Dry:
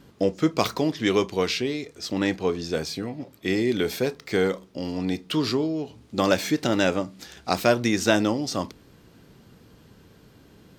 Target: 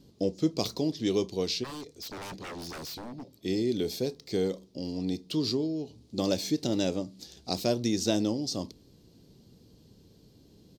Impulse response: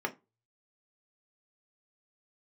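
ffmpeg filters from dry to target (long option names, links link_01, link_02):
-filter_complex "[0:a]firequalizer=gain_entry='entry(350,0);entry(1400,-17);entry(4300,4);entry(8300,-2)':delay=0.05:min_phase=1,asplit=3[link_01][link_02][link_03];[link_01]afade=type=out:start_time=1.63:duration=0.02[link_04];[link_02]aeval=exprs='0.0299*(abs(mod(val(0)/0.0299+3,4)-2)-1)':channel_layout=same,afade=type=in:start_time=1.63:duration=0.02,afade=type=out:start_time=3.35:duration=0.02[link_05];[link_03]afade=type=in:start_time=3.35:duration=0.02[link_06];[link_04][link_05][link_06]amix=inputs=3:normalize=0,volume=-4.5dB"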